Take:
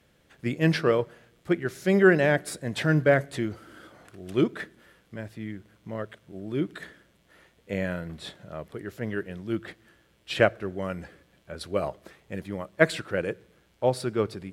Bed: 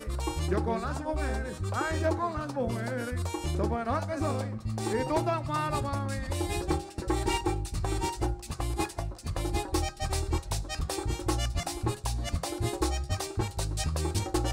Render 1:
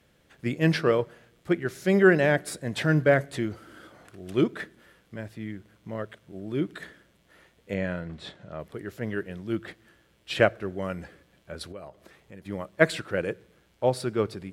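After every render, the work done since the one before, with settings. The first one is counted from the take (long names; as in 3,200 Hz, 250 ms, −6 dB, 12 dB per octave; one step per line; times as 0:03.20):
0:07.74–0:08.60: high-frequency loss of the air 68 metres
0:11.72–0:12.46: downward compressor 2 to 1, threshold −49 dBFS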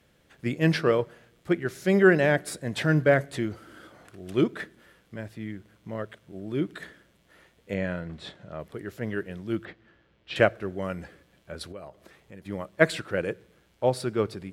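0:09.65–0:10.36: high-frequency loss of the air 190 metres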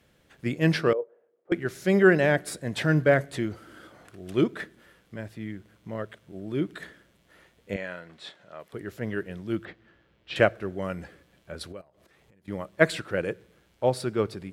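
0:00.93–0:01.52: four-pole ladder band-pass 520 Hz, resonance 60%
0:07.76–0:08.73: high-pass filter 860 Hz 6 dB per octave
0:11.81–0:12.48: downward compressor 12 to 1, threshold −56 dBFS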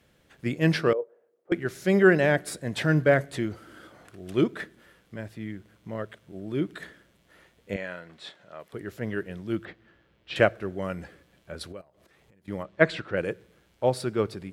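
0:12.63–0:13.17: low-pass filter 4,200 Hz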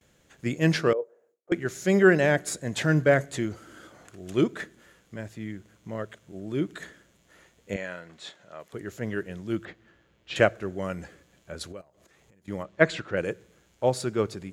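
noise gate with hold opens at −58 dBFS
parametric band 6,800 Hz +11.5 dB 0.34 octaves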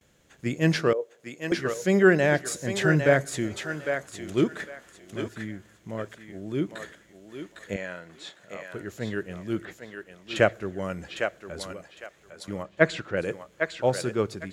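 feedback echo with a high-pass in the loop 805 ms, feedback 24%, high-pass 540 Hz, level −5 dB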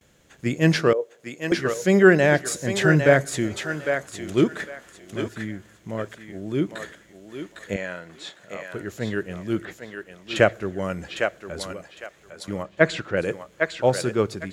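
level +4 dB
brickwall limiter −2 dBFS, peak gain reduction 2.5 dB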